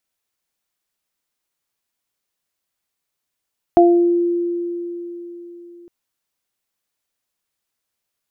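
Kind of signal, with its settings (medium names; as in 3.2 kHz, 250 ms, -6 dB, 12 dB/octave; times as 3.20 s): additive tone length 2.11 s, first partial 346 Hz, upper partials 1 dB, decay 3.96 s, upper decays 0.48 s, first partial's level -8 dB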